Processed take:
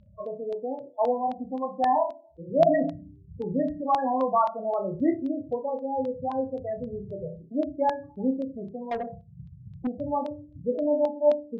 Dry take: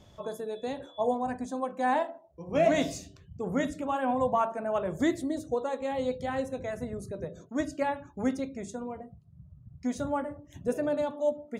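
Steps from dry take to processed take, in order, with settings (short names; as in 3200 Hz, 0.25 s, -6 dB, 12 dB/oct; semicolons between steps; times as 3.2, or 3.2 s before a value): Wiener smoothing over 15 samples; loudest bins only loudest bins 8; flutter echo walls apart 5.2 m, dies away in 0.27 s; LFO low-pass saw down 3.8 Hz 860–3800 Hz; 8.91–9.87 overdrive pedal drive 25 dB, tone 3500 Hz, clips at -21.5 dBFS; gain +1.5 dB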